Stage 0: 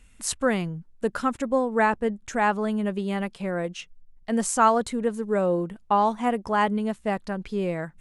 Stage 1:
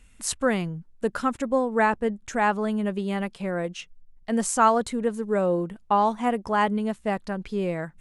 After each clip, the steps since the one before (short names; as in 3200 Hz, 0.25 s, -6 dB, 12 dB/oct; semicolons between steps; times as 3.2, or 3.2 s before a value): nothing audible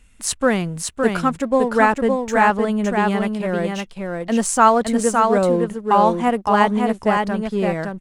in parallel at -4.5 dB: crossover distortion -39.5 dBFS; on the sum: echo 0.563 s -4 dB; gain +2 dB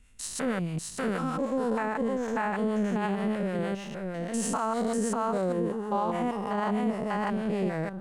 stepped spectrum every 0.2 s; harmonic tremolo 6.4 Hz, depth 50%, crossover 600 Hz; limiter -16.5 dBFS, peak gain reduction 10 dB; gain -3 dB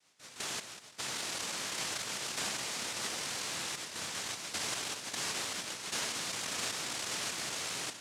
Chebyshev band-pass 590–3300 Hz, order 4; noise vocoder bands 1; in parallel at +2 dB: negative-ratio compressor -40 dBFS, ratio -1; on the sum: gain -7.5 dB